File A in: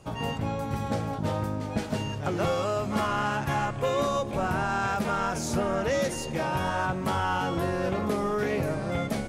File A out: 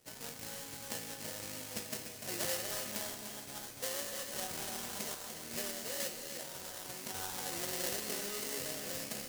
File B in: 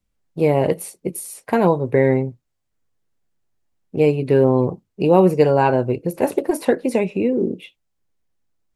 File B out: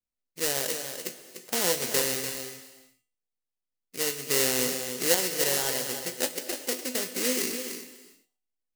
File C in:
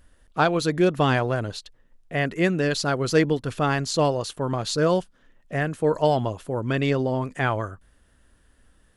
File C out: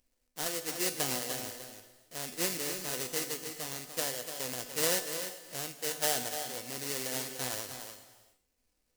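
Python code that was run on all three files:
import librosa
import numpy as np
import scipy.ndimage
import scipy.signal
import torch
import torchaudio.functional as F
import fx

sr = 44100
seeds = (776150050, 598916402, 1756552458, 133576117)

p1 = scipy.ndimage.median_filter(x, 41, mode='constant')
p2 = fx.sample_hold(p1, sr, seeds[0], rate_hz=2400.0, jitter_pct=20)
p3 = fx.bass_treble(p2, sr, bass_db=-7, treble_db=13)
p4 = fx.comb_fb(p3, sr, f0_hz=250.0, decay_s=0.37, harmonics='all', damping=0.0, mix_pct=70)
p5 = fx.tremolo_random(p4, sr, seeds[1], hz=3.5, depth_pct=55)
p6 = fx.low_shelf(p5, sr, hz=400.0, db=-8.0)
p7 = p6 + fx.echo_single(p6, sr, ms=295, db=-9.0, dry=0)
p8 = fx.rev_gated(p7, sr, seeds[2], gate_ms=430, shape='flat', drr_db=10.5)
y = p8 * librosa.db_to_amplitude(2.0)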